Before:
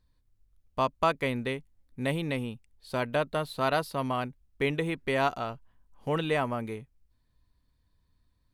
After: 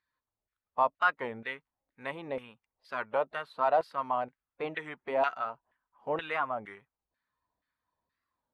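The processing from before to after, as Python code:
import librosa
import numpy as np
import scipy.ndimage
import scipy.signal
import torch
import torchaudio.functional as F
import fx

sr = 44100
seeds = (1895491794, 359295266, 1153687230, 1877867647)

y = fx.spec_quant(x, sr, step_db=15)
y = fx.filter_lfo_bandpass(y, sr, shape='saw_down', hz=2.1, low_hz=620.0, high_hz=1900.0, q=2.1)
y = fx.record_warp(y, sr, rpm=33.33, depth_cents=160.0)
y = F.gain(torch.from_numpy(y), 4.5).numpy()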